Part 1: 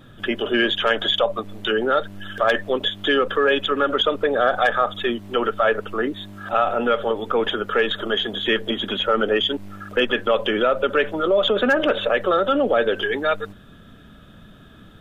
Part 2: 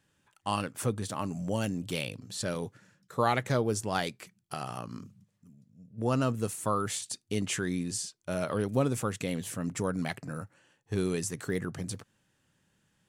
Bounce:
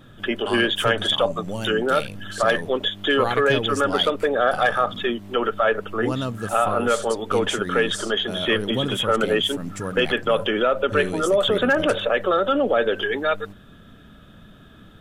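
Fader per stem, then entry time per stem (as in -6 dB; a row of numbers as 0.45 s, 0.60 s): -1.0 dB, +1.0 dB; 0.00 s, 0.00 s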